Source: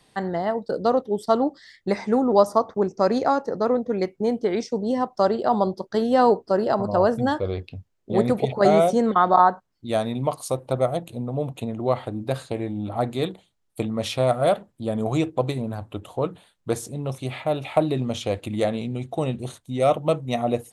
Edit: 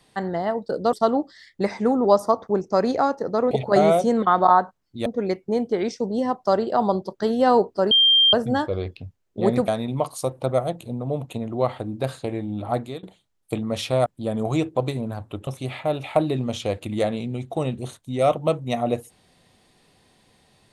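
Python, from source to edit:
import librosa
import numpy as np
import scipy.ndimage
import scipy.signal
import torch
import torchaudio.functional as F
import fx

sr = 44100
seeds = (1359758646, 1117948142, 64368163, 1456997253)

y = fx.edit(x, sr, fx.cut(start_s=0.93, length_s=0.27),
    fx.bleep(start_s=6.63, length_s=0.42, hz=3180.0, db=-12.5),
    fx.move(start_s=8.4, length_s=1.55, to_s=3.78),
    fx.fade_out_to(start_s=13.02, length_s=0.28, floor_db=-23.0),
    fx.cut(start_s=14.33, length_s=0.34),
    fx.cut(start_s=16.08, length_s=1.0), tone=tone)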